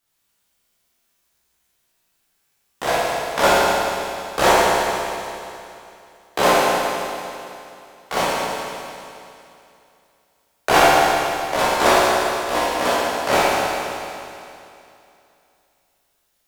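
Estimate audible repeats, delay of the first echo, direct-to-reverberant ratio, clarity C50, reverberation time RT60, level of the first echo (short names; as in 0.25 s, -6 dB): none, none, -9.0 dB, -4.0 dB, 2.7 s, none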